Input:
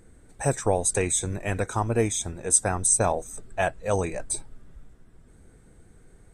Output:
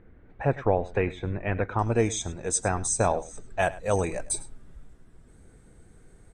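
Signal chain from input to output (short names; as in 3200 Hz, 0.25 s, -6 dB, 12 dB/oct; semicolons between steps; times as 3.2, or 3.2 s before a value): LPF 2700 Hz 24 dB/oct, from 1.79 s 7000 Hz, from 3.59 s 12000 Hz; echo 0.103 s -18.5 dB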